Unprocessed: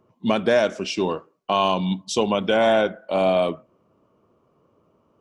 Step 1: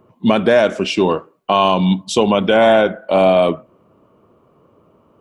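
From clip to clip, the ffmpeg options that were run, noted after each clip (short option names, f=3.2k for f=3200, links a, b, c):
-filter_complex "[0:a]equalizer=f=5.6k:w=1.6:g=-7.5,asplit=2[a][b];[b]alimiter=limit=-15.5dB:level=0:latency=1,volume=2.5dB[c];[a][c]amix=inputs=2:normalize=0,volume=2dB"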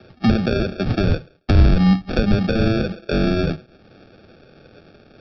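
-filter_complex "[0:a]aresample=11025,acrusher=samples=11:mix=1:aa=0.000001,aresample=44100,acrossover=split=180[a][b];[b]acompressor=threshold=-28dB:ratio=5[c];[a][c]amix=inputs=2:normalize=0,volume=5.5dB"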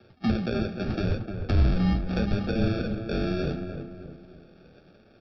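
-filter_complex "[0:a]asplit=2[a][b];[b]adelay=303,lowpass=f=1.6k:p=1,volume=-6.5dB,asplit=2[c][d];[d]adelay=303,lowpass=f=1.6k:p=1,volume=0.44,asplit=2[e][f];[f]adelay=303,lowpass=f=1.6k:p=1,volume=0.44,asplit=2[g][h];[h]adelay=303,lowpass=f=1.6k:p=1,volume=0.44,asplit=2[i][j];[j]adelay=303,lowpass=f=1.6k:p=1,volume=0.44[k];[c][e][g][i][k]amix=inputs=5:normalize=0[l];[a][l]amix=inputs=2:normalize=0,flanger=delay=8.6:depth=9.6:regen=-41:speed=0.78:shape=sinusoidal,volume=-5.5dB"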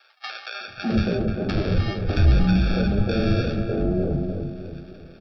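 -filter_complex "[0:a]asplit=2[a][b];[b]alimiter=limit=-22.5dB:level=0:latency=1:release=52,volume=1dB[c];[a][c]amix=inputs=2:normalize=0,acrossover=split=230|900[d][e][f];[e]adelay=600[g];[d]adelay=670[h];[h][g][f]amix=inputs=3:normalize=0,volume=2dB"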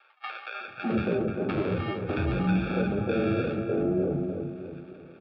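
-af "highpass=180,equalizer=f=210:t=q:w=4:g=-5,equalizer=f=670:t=q:w=4:g=-6,equalizer=f=1k:t=q:w=4:g=6,equalizer=f=1.7k:t=q:w=4:g=-6,lowpass=f=2.7k:w=0.5412,lowpass=f=2.7k:w=1.3066"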